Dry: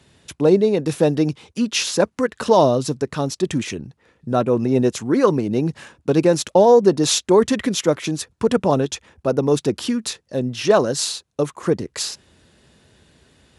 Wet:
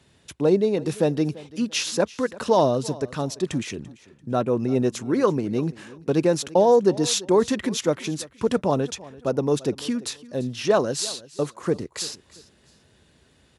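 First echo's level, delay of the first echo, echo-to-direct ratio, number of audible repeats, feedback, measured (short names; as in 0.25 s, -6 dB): -20.0 dB, 0.34 s, -19.5 dB, 2, 29%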